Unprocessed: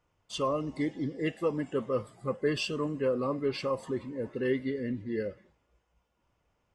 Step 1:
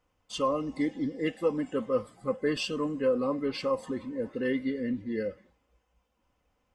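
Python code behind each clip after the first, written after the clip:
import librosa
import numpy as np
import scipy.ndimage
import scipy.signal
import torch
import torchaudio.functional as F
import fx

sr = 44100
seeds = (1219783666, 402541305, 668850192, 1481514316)

y = x + 0.47 * np.pad(x, (int(3.9 * sr / 1000.0), 0))[:len(x)]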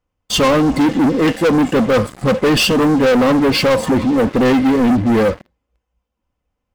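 y = fx.low_shelf(x, sr, hz=240.0, db=7.5)
y = fx.leveller(y, sr, passes=5)
y = F.gain(torch.from_numpy(y), 4.5).numpy()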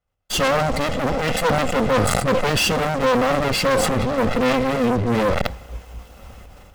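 y = fx.lower_of_two(x, sr, delay_ms=1.5)
y = fx.sustainer(y, sr, db_per_s=20.0)
y = F.gain(torch.from_numpy(y), -4.0).numpy()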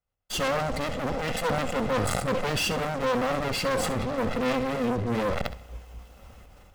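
y = fx.room_flutter(x, sr, wall_m=11.5, rt60_s=0.28)
y = F.gain(torch.from_numpy(y), -8.0).numpy()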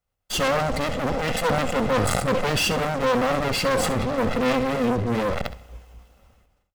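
y = fx.fade_out_tail(x, sr, length_s=1.83)
y = F.gain(torch.from_numpy(y), 4.5).numpy()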